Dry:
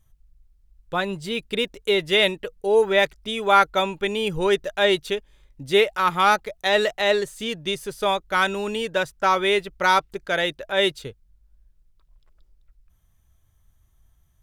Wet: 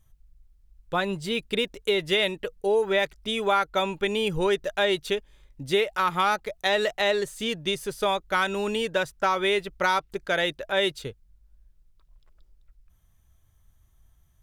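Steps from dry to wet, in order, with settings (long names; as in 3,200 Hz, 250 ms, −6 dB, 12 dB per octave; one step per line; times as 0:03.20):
downward compressor 4 to 1, threshold −20 dBFS, peak gain reduction 8.5 dB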